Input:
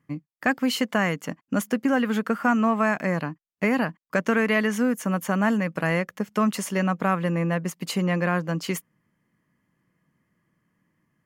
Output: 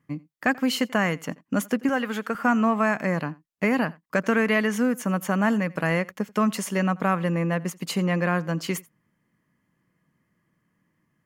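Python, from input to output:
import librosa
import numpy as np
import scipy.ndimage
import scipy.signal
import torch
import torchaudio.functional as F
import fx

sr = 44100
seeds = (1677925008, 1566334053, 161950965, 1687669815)

y = fx.low_shelf(x, sr, hz=250.0, db=-11.5, at=(1.89, 2.35))
y = y + 10.0 ** (-23.5 / 20.0) * np.pad(y, (int(86 * sr / 1000.0), 0))[:len(y)]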